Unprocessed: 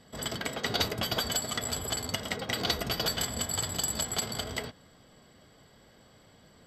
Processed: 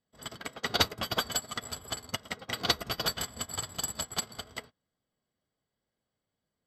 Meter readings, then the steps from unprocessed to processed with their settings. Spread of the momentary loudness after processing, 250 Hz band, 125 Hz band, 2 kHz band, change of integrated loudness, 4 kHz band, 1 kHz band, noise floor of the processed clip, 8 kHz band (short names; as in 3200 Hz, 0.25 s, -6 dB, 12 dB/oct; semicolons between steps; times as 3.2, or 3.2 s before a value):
13 LU, -4.5 dB, -5.0 dB, -1.0 dB, -2.0 dB, -1.0 dB, 0.0 dB, under -85 dBFS, -4.0 dB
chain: dynamic EQ 1200 Hz, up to +5 dB, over -52 dBFS, Q 2.4; upward expander 2.5:1, over -46 dBFS; gain +4 dB